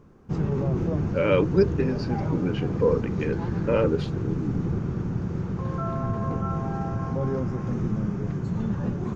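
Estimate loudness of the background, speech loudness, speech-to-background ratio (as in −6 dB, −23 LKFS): −28.0 LKFS, −27.0 LKFS, 1.0 dB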